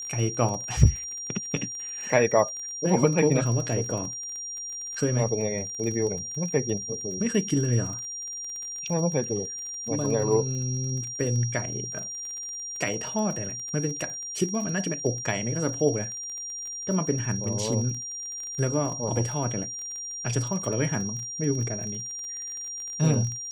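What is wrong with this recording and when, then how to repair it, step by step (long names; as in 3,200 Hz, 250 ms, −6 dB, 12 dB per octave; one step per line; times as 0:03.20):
surface crackle 28 per second −33 dBFS
whistle 5,700 Hz −33 dBFS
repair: click removal
notch filter 5,700 Hz, Q 30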